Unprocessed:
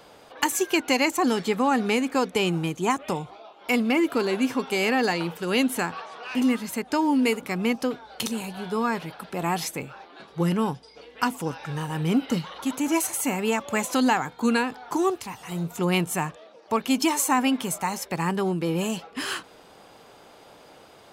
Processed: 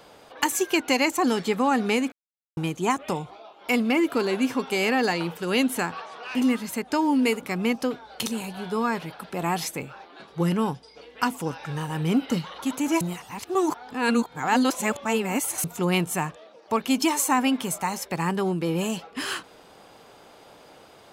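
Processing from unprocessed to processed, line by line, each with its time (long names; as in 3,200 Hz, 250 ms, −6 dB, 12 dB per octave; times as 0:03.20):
0:02.12–0:02.57: silence
0:13.01–0:15.64: reverse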